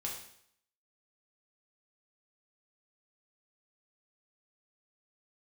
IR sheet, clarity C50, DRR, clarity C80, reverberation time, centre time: 4.5 dB, -2.0 dB, 8.0 dB, 0.65 s, 35 ms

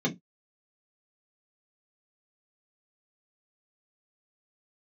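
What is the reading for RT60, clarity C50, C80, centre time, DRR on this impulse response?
no single decay rate, 18.0 dB, 29.5 dB, 11 ms, -2.0 dB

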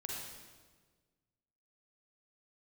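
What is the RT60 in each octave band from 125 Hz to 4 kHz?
1.9 s, 1.7 s, 1.6 s, 1.3 s, 1.2 s, 1.2 s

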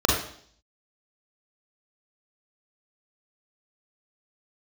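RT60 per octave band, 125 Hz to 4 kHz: 0.60 s, 0.65 s, 0.60 s, 0.55 s, 0.55 s, 0.65 s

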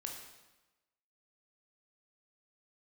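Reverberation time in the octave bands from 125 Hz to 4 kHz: 1.1 s, 1.1 s, 1.1 s, 1.1 s, 1.0 s, 0.95 s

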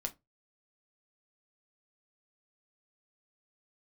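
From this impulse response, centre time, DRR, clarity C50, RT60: 6 ms, 4.0 dB, 20.5 dB, 0.20 s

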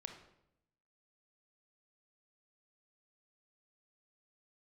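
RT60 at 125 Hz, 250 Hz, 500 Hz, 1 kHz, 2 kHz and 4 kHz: 1.1 s, 1.0 s, 0.85 s, 0.75 s, 0.65 s, 0.60 s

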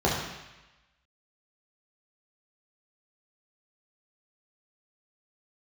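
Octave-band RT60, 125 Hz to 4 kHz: 1.0 s, 0.95 s, 0.95 s, 1.1 s, 1.2 s, 1.1 s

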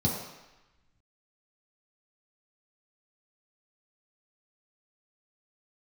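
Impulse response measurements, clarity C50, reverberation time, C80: 3.0 dB, 1.0 s, 5.0 dB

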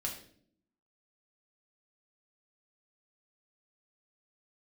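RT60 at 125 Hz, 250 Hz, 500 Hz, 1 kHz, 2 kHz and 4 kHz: 0.85 s, 1.0 s, 0.70 s, 0.45 s, 0.45 s, 0.45 s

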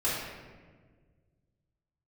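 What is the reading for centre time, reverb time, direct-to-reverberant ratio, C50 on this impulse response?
88 ms, 1.6 s, -10.5 dB, -0.5 dB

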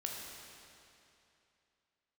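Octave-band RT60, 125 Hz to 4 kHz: 2.8 s, 2.7 s, 2.8 s, 2.8 s, 2.7 s, 2.5 s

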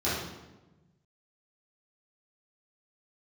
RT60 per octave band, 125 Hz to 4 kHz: 1.9 s, 1.5 s, 1.2 s, 1.0 s, 0.85 s, 0.80 s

